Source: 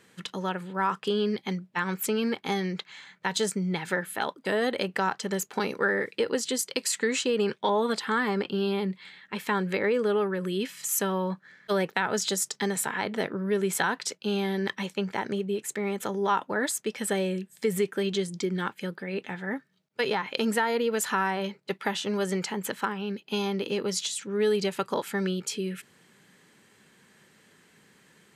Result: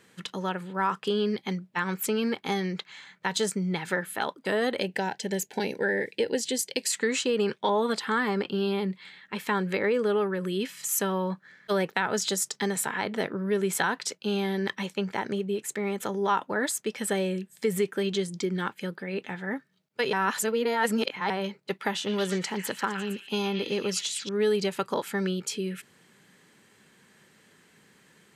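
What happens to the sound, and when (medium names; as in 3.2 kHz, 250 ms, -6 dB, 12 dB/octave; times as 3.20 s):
4.81–6.91 s: Butterworth band-stop 1.2 kHz, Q 1.8
20.13–21.30 s: reverse
21.95–24.29 s: repeats whose band climbs or falls 115 ms, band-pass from 2.1 kHz, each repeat 0.7 oct, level -2.5 dB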